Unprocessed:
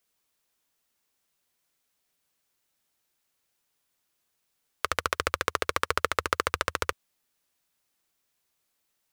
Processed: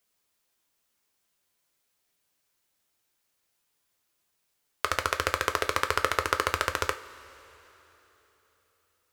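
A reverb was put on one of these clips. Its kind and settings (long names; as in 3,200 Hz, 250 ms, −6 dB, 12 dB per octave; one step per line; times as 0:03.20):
coupled-rooms reverb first 0.27 s, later 3.7 s, from −19 dB, DRR 6.5 dB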